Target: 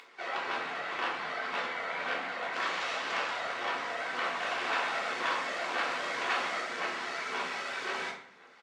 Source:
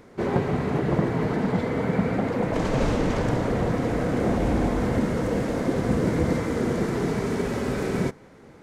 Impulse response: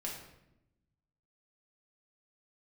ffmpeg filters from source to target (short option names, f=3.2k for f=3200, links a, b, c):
-filter_complex "[0:a]asplit=3[a][b][c];[a]afade=t=out:st=4.39:d=0.02[d];[b]asplit=8[e][f][g][h][i][j][k][l];[f]adelay=109,afreqshift=51,volume=-3dB[m];[g]adelay=218,afreqshift=102,volume=-9dB[n];[h]adelay=327,afreqshift=153,volume=-15dB[o];[i]adelay=436,afreqshift=204,volume=-21.1dB[p];[j]adelay=545,afreqshift=255,volume=-27.1dB[q];[k]adelay=654,afreqshift=306,volume=-33.1dB[r];[l]adelay=763,afreqshift=357,volume=-39.1dB[s];[e][m][n][o][p][q][r][s]amix=inputs=8:normalize=0,afade=t=in:st=4.39:d=0.02,afade=t=out:st=6.6:d=0.02[t];[c]afade=t=in:st=6.6:d=0.02[u];[d][t][u]amix=inputs=3:normalize=0,aphaser=in_gain=1:out_gain=1:delay=1.6:decay=0.53:speed=1.9:type=sinusoidal,aeval=exprs='0.15*(abs(mod(val(0)/0.15+3,4)-2)-1)':c=same,lowpass=4.5k,acompressor=mode=upward:threshold=-42dB:ratio=2.5,highpass=1.5k,tremolo=f=80:d=0.462[v];[1:a]atrim=start_sample=2205,asetrate=70560,aresample=44100[w];[v][w]afir=irnorm=-1:irlink=0,volume=8.5dB"